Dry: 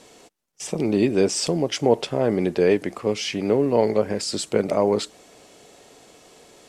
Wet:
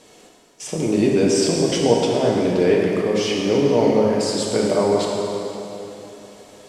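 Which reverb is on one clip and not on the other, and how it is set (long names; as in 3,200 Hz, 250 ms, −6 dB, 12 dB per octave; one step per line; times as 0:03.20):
dense smooth reverb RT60 3.3 s, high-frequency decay 0.8×, DRR −2.5 dB
level −1 dB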